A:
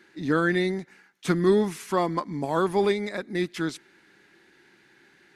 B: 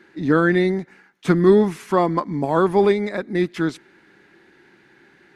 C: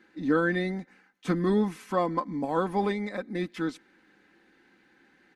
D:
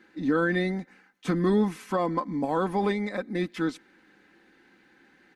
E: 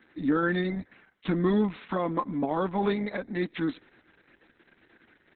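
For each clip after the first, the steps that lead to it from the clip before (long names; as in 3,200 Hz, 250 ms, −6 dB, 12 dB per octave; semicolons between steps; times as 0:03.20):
high-shelf EQ 2,800 Hz −10.5 dB; level +7 dB
comb filter 3.9 ms, depth 54%; level −9 dB
brickwall limiter −18 dBFS, peak gain reduction 6 dB; level +2.5 dB
Opus 6 kbit/s 48,000 Hz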